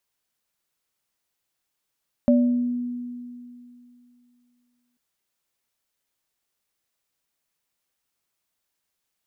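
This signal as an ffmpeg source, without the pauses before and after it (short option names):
-f lavfi -i "aevalsrc='0.211*pow(10,-3*t/2.71)*sin(2*PI*244*t)+0.141*pow(10,-3*t/0.56)*sin(2*PI*581*t)':d=2.69:s=44100"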